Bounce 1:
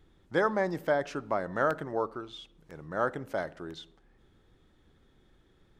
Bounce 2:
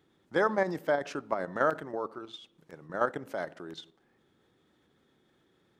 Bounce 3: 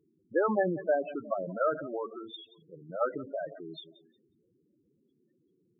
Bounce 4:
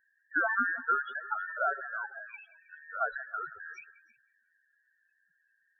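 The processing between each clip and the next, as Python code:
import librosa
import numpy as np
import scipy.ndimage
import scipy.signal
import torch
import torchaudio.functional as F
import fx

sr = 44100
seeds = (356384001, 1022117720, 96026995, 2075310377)

y1 = scipy.signal.sosfilt(scipy.signal.butter(2, 160.0, 'highpass', fs=sr, output='sos'), x)
y1 = fx.level_steps(y1, sr, step_db=9)
y1 = y1 * librosa.db_to_amplitude(3.0)
y2 = fx.echo_feedback(y1, sr, ms=179, feedback_pct=41, wet_db=-19.0)
y2 = fx.transient(y2, sr, attack_db=2, sustain_db=6)
y2 = fx.spec_topn(y2, sr, count=8)
y3 = fx.band_invert(y2, sr, width_hz=2000)
y3 = y3 + 10.0 ** (-20.0 / 20.0) * np.pad(y3, (int(319 * sr / 1000.0), 0))[:len(y3)]
y3 = y3 * librosa.db_to_amplitude(-2.0)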